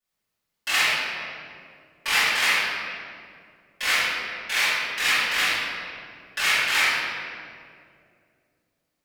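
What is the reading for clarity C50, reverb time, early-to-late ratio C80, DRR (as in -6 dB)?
-4.5 dB, 2.3 s, -1.5 dB, -18.0 dB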